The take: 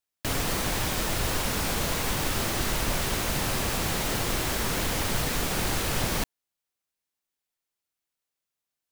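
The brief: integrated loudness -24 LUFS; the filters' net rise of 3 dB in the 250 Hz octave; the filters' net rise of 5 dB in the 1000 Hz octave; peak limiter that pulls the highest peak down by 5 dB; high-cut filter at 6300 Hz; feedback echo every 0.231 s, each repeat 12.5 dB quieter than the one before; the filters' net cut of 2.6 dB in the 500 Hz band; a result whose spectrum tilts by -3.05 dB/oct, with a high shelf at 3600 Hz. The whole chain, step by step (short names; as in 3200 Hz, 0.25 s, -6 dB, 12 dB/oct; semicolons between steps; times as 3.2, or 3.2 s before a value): LPF 6300 Hz; bell 250 Hz +5.5 dB; bell 500 Hz -7.5 dB; bell 1000 Hz +7.5 dB; high shelf 3600 Hz +5.5 dB; limiter -17.5 dBFS; feedback echo 0.231 s, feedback 24%, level -12.5 dB; gain +3 dB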